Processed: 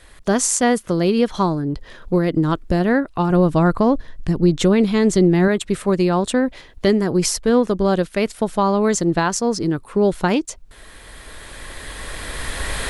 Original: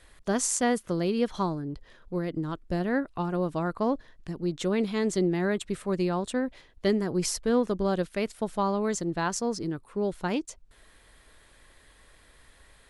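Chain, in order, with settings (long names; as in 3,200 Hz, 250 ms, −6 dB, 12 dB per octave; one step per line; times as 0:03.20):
camcorder AGC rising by 9.2 dB per second
0:03.30–0:05.48: low-shelf EQ 140 Hz +10.5 dB
level +8.5 dB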